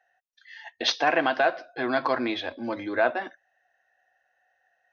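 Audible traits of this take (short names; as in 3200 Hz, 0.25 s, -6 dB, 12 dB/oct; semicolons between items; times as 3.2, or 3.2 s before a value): noise floor -73 dBFS; spectral tilt -0.5 dB/oct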